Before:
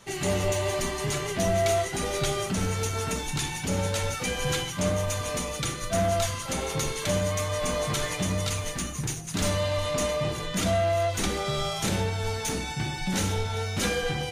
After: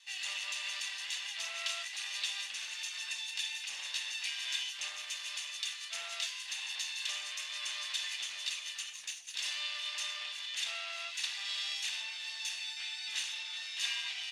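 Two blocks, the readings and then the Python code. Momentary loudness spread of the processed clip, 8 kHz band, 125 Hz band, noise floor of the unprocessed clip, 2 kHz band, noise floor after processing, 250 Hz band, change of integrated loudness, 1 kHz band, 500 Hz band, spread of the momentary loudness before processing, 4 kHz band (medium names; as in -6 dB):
4 LU, -9.0 dB, under -40 dB, -35 dBFS, -5.0 dB, -45 dBFS, under -40 dB, -8.5 dB, -20.5 dB, -34.0 dB, 5 LU, -1.0 dB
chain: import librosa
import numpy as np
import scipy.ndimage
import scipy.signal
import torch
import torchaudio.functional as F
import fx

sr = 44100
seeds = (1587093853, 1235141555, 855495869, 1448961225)

y = fx.lower_of_two(x, sr, delay_ms=1.1)
y = fx.ladder_bandpass(y, sr, hz=3600.0, resonance_pct=35)
y = y * librosa.db_to_amplitude(8.5)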